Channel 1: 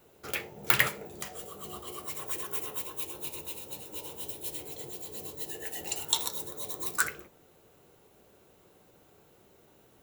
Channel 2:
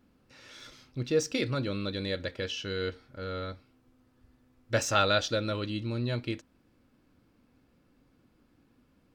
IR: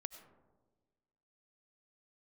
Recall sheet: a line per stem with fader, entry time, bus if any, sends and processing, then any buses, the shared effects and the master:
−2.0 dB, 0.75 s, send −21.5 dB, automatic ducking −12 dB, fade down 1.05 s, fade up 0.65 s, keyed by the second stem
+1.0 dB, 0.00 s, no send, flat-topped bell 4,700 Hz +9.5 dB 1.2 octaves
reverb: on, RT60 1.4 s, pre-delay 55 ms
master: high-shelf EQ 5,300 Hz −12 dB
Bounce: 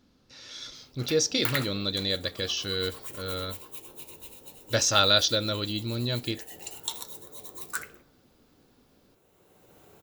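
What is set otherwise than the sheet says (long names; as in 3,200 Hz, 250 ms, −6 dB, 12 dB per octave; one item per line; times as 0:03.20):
stem 1 −2.0 dB → +4.5 dB
master: missing high-shelf EQ 5,300 Hz −12 dB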